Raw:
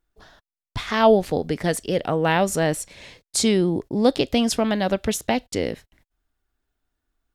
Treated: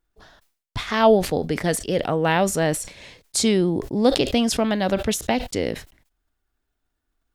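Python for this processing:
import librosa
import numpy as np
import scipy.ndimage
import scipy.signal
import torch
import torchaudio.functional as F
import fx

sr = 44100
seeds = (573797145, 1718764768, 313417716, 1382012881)

y = fx.sustainer(x, sr, db_per_s=130.0)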